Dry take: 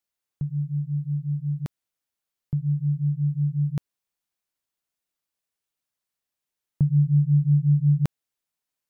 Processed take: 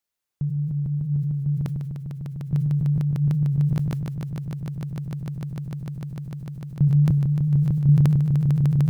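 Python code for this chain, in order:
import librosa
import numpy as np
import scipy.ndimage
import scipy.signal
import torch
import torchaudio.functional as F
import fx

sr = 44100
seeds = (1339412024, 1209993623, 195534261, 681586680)

y = fx.tilt_shelf(x, sr, db=-8.5, hz=670.0, at=(7.1, 7.89))
y = fx.echo_swell(y, sr, ms=150, loudest=8, wet_db=-3.0)
y = fx.sustainer(y, sr, db_per_s=22.0)
y = y * librosa.db_to_amplitude(1.5)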